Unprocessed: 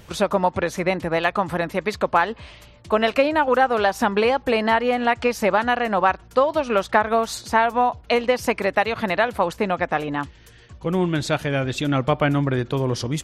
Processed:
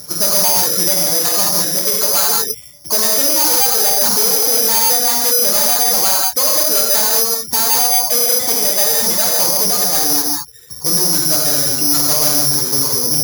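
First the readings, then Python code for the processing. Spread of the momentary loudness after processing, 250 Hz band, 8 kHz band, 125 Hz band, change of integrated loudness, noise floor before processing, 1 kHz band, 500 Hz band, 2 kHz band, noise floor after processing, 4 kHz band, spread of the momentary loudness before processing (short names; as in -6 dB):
3 LU, -2.5 dB, +28.0 dB, -4.0 dB, +10.0 dB, -48 dBFS, -2.0 dB, -2.5 dB, -3.5 dB, -33 dBFS, +16.0 dB, 5 LU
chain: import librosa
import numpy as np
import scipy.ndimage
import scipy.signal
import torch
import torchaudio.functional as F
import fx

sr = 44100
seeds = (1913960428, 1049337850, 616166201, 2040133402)

p1 = (np.mod(10.0 ** (18.0 / 20.0) * x + 1.0, 2.0) - 1.0) / 10.0 ** (18.0 / 20.0)
p2 = x + (p1 * librosa.db_to_amplitude(-4.0))
p3 = scipy.signal.sosfilt(scipy.signal.butter(2, 1700.0, 'lowpass', fs=sr, output='sos'), p2)
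p4 = fx.dereverb_blind(p3, sr, rt60_s=0.94)
p5 = p4 + 0.4 * np.pad(p4, (int(6.6 * sr / 1000.0), 0))[:len(p4)]
p6 = fx.dereverb_blind(p5, sr, rt60_s=0.53)
p7 = fx.rev_gated(p6, sr, seeds[0], gate_ms=230, shape='flat', drr_db=-2.5)
p8 = (np.kron(scipy.signal.resample_poly(p7, 1, 8), np.eye(8)[0]) * 8)[:len(p7)]
p9 = 10.0 ** (-0.5 / 20.0) * np.tanh(p8 / 10.0 ** (-0.5 / 20.0))
p10 = fx.highpass(p9, sr, hz=130.0, slope=6)
y = p10 * librosa.db_to_amplitude(-1.0)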